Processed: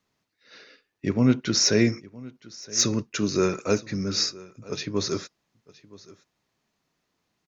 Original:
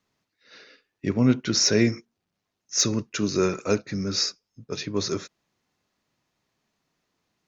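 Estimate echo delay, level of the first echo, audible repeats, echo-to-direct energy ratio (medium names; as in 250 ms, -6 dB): 968 ms, -21.0 dB, 1, -21.0 dB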